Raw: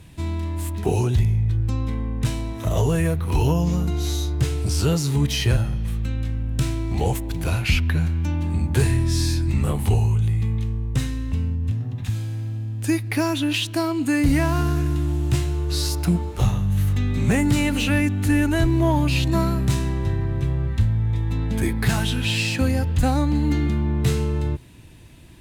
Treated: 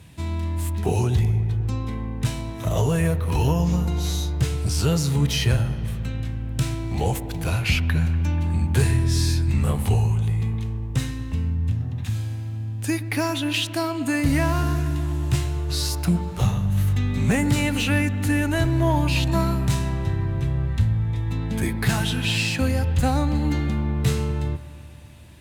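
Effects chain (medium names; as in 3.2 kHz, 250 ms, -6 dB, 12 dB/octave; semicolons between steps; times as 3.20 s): high-pass 64 Hz; peaking EQ 330 Hz -4 dB 0.6 oct; on a send: feedback echo behind a low-pass 121 ms, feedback 77%, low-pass 1.8 kHz, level -15 dB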